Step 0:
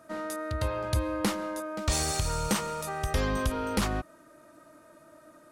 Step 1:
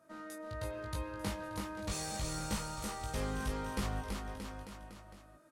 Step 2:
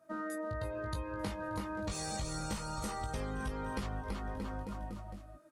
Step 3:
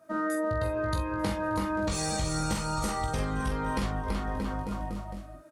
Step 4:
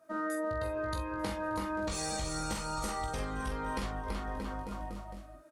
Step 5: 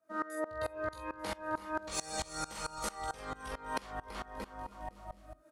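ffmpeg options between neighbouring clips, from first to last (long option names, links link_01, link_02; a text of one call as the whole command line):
ffmpeg -i in.wav -filter_complex "[0:a]flanger=delay=18.5:depth=2:speed=0.38,asplit=2[link_01][link_02];[link_02]aecho=0:1:330|627|894.3|1135|1351:0.631|0.398|0.251|0.158|0.1[link_03];[link_01][link_03]amix=inputs=2:normalize=0,volume=-8dB" out.wav
ffmpeg -i in.wav -af "afftdn=noise_reduction=13:noise_floor=-49,acompressor=threshold=-46dB:ratio=6,volume=10.5dB" out.wav
ffmpeg -i in.wav -filter_complex "[0:a]asplit=2[link_01][link_02];[link_02]adelay=45,volume=-7dB[link_03];[link_01][link_03]amix=inputs=2:normalize=0,volume=7dB" out.wav
ffmpeg -i in.wav -af "equalizer=frequency=130:width=0.91:gain=-7,volume=-4dB" out.wav
ffmpeg -i in.wav -filter_complex "[0:a]acrossover=split=410|830|6500[link_01][link_02][link_03][link_04];[link_01]acompressor=threshold=-46dB:ratio=5[link_05];[link_05][link_02][link_03][link_04]amix=inputs=4:normalize=0,aeval=exprs='val(0)*pow(10,-22*if(lt(mod(-4.5*n/s,1),2*abs(-4.5)/1000),1-mod(-4.5*n/s,1)/(2*abs(-4.5)/1000),(mod(-4.5*n/s,1)-2*abs(-4.5)/1000)/(1-2*abs(-4.5)/1000))/20)':channel_layout=same,volume=5dB" out.wav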